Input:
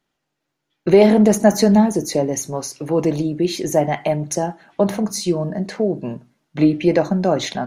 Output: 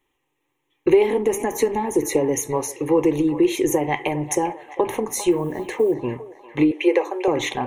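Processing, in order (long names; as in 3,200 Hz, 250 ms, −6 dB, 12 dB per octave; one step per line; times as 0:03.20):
0:05.31–0:05.96: one scale factor per block 7 bits
0:06.71–0:07.28: Butterworth high-pass 360 Hz 48 dB per octave
downward compressor 5 to 1, threshold −17 dBFS, peak gain reduction 10 dB
phaser with its sweep stopped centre 970 Hz, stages 8
delay with a band-pass on its return 399 ms, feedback 51%, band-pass 1,200 Hz, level −10.5 dB
level +6 dB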